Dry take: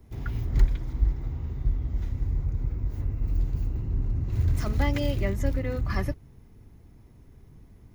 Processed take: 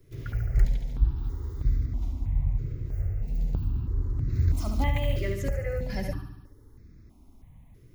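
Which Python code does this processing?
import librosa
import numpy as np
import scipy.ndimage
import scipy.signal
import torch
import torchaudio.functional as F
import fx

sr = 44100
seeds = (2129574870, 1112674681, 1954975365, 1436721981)

y = fx.high_shelf(x, sr, hz=fx.line((1.16, 5200.0), (1.85, 3700.0)), db=11.5, at=(1.16, 1.85), fade=0.02)
y = fx.echo_feedback(y, sr, ms=71, feedback_pct=56, wet_db=-6.5)
y = fx.phaser_held(y, sr, hz=3.1, low_hz=220.0, high_hz=3000.0)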